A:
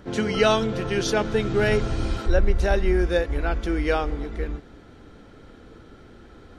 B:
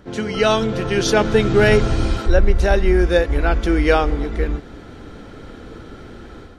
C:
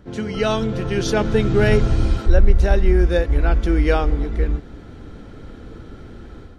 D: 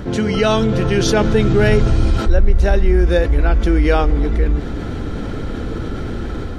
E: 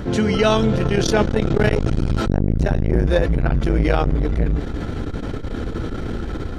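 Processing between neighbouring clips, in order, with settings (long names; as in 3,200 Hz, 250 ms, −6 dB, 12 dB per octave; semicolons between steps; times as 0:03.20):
automatic gain control gain up to 10 dB
low-shelf EQ 250 Hz +8 dB; level −5.5 dB
envelope flattener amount 50%; level −1 dB
saturating transformer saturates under 260 Hz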